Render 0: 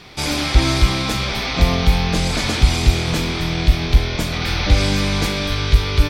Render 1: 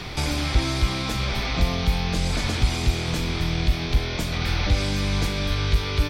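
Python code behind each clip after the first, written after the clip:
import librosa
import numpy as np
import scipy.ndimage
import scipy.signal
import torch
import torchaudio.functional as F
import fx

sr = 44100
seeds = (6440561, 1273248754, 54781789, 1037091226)

y = fx.band_squash(x, sr, depth_pct=70)
y = F.gain(torch.from_numpy(y), -7.0).numpy()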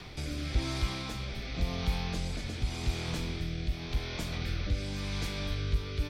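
y = fx.rotary(x, sr, hz=0.9)
y = F.gain(torch.from_numpy(y), -8.5).numpy()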